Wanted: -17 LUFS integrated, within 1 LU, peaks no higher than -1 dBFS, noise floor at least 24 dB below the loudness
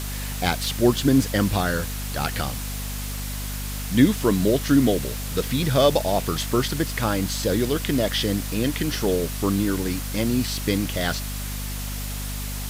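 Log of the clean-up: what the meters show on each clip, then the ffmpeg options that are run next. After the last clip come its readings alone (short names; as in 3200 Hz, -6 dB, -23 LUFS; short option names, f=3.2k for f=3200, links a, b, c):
hum 50 Hz; harmonics up to 250 Hz; hum level -29 dBFS; noise floor -30 dBFS; noise floor target -48 dBFS; loudness -23.5 LUFS; peak -4.5 dBFS; loudness target -17.0 LUFS
-> -af "bandreject=f=50:t=h:w=4,bandreject=f=100:t=h:w=4,bandreject=f=150:t=h:w=4,bandreject=f=200:t=h:w=4,bandreject=f=250:t=h:w=4"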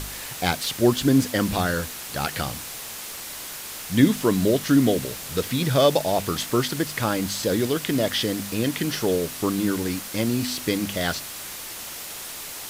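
hum none; noise floor -36 dBFS; noise floor target -48 dBFS
-> -af "afftdn=nr=12:nf=-36"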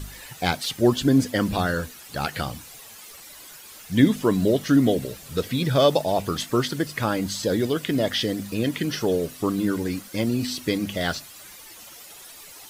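noise floor -44 dBFS; noise floor target -48 dBFS
-> -af "afftdn=nr=6:nf=-44"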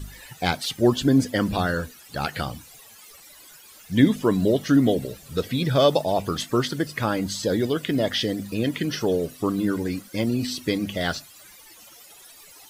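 noise floor -49 dBFS; loudness -24.0 LUFS; peak -4.5 dBFS; loudness target -17.0 LUFS
-> -af "volume=7dB,alimiter=limit=-1dB:level=0:latency=1"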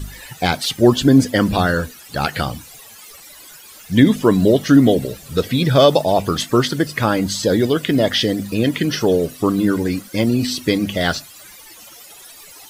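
loudness -17.0 LUFS; peak -1.0 dBFS; noise floor -42 dBFS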